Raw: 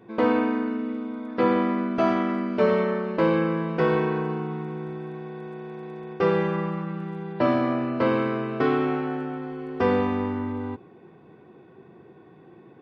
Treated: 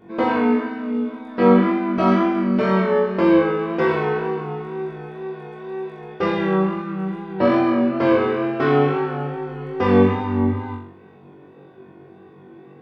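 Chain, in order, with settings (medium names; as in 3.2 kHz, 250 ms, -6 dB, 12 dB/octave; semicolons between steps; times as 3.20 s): wow and flutter 49 cents; flutter echo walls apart 3.6 m, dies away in 0.53 s; trim +1 dB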